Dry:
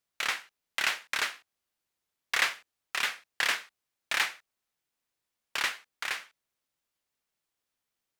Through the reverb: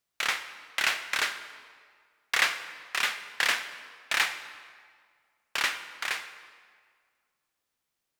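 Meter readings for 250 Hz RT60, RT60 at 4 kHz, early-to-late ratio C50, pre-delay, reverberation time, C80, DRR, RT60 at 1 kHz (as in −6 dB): 1.8 s, 1.4 s, 11.0 dB, 23 ms, 1.9 s, 12.0 dB, 9.5 dB, 1.9 s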